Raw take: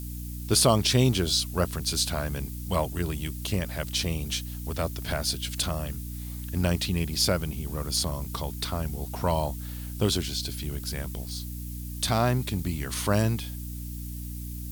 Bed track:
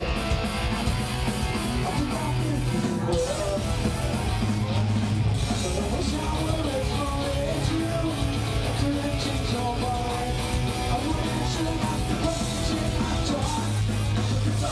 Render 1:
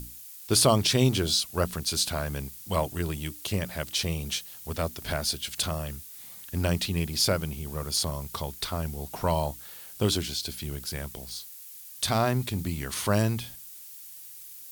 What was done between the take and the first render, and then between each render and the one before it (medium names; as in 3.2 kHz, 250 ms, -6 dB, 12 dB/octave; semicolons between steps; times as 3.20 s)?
hum notches 60/120/180/240/300 Hz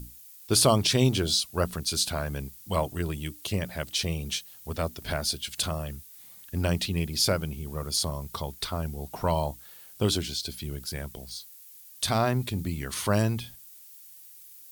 noise reduction 6 dB, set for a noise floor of -45 dBFS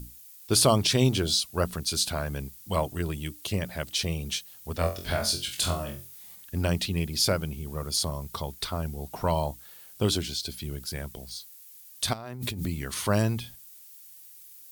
4.78–6.36 s: flutter echo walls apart 3.9 m, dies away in 0.32 s; 12.13–12.66 s: compressor with a negative ratio -36 dBFS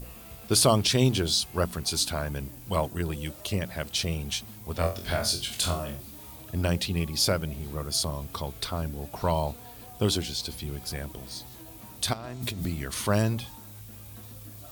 add bed track -22 dB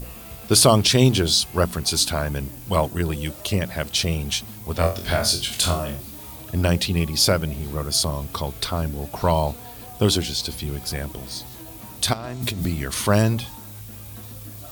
trim +6.5 dB; peak limiter -3 dBFS, peak gain reduction 1 dB